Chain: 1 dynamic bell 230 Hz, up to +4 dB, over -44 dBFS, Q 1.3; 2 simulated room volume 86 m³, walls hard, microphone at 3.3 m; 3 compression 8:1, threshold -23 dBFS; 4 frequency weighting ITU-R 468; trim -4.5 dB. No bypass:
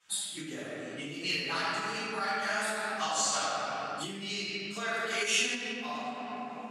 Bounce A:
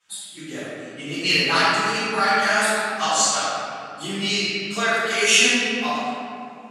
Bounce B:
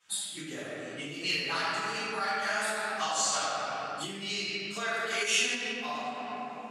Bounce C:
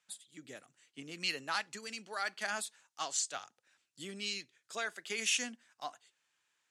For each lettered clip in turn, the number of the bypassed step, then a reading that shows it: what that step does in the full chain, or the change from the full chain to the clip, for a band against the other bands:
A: 3, mean gain reduction 9.5 dB; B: 1, 250 Hz band -2.5 dB; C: 2, momentary loudness spread change +6 LU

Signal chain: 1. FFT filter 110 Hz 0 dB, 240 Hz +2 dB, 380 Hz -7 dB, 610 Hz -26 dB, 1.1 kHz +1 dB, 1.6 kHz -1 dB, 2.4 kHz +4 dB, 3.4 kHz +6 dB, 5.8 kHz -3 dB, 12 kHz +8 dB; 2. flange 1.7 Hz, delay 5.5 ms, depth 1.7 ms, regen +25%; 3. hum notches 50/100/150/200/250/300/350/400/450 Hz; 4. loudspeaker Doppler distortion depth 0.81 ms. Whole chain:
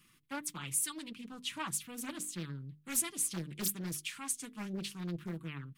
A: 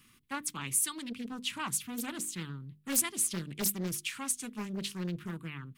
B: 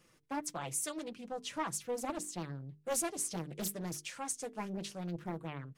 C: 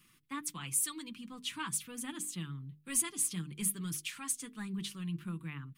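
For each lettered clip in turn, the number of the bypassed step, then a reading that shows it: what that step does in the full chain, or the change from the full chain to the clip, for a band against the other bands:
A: 2, loudness change +3.5 LU; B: 1, 500 Hz band +10.0 dB; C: 4, 500 Hz band -6.0 dB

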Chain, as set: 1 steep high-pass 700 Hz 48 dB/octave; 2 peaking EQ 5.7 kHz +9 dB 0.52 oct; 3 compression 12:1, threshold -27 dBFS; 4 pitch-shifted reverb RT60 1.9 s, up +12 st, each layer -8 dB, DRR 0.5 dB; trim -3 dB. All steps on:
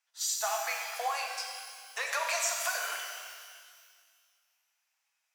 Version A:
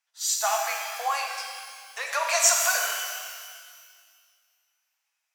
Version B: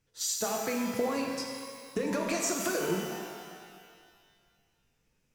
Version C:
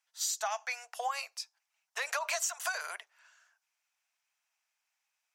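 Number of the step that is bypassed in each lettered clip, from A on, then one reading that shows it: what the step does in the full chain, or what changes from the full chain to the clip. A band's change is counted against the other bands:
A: 3, mean gain reduction 4.5 dB; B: 1, 500 Hz band +10.5 dB; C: 4, momentary loudness spread change -3 LU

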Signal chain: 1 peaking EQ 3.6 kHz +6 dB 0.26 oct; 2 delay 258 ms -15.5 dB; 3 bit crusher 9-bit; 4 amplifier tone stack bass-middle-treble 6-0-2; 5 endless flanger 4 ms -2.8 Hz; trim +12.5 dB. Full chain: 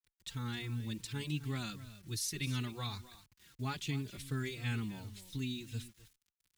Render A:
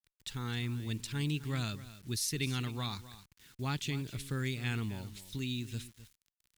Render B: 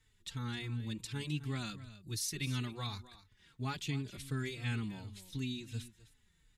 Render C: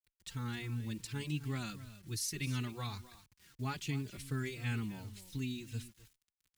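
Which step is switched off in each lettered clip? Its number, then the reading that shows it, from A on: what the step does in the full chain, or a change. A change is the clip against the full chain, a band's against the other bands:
5, momentary loudness spread change +1 LU; 3, distortion -28 dB; 1, 4 kHz band -3.0 dB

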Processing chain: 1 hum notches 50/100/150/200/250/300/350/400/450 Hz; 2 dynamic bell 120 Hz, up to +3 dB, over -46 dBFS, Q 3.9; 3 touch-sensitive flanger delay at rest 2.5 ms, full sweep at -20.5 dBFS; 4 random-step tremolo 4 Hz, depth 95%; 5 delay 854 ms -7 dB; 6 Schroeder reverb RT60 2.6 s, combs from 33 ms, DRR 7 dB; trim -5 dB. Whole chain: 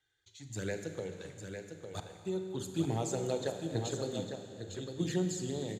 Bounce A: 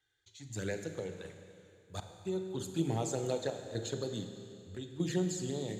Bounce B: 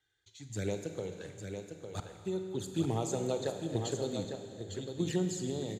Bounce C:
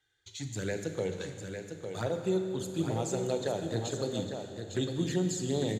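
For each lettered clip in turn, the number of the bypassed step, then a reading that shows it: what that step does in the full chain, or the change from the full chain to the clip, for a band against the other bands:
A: 5, echo-to-direct -3.5 dB to -7.0 dB; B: 1, 2 kHz band -3.0 dB; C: 4, momentary loudness spread change -2 LU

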